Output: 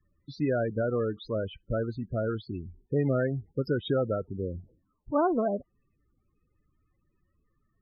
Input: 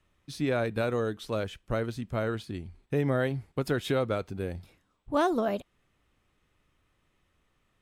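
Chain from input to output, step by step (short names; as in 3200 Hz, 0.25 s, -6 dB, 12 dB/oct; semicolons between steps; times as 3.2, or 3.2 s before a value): 4.28–5.3 median filter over 15 samples; loudest bins only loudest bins 16; gain +1 dB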